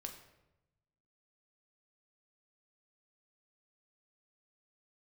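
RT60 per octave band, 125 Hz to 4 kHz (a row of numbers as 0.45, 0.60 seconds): 1.5, 1.1, 1.0, 0.85, 0.75, 0.65 seconds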